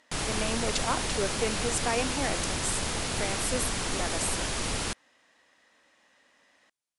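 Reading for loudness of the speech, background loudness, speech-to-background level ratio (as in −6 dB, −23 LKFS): −33.0 LKFS, −30.5 LKFS, −2.5 dB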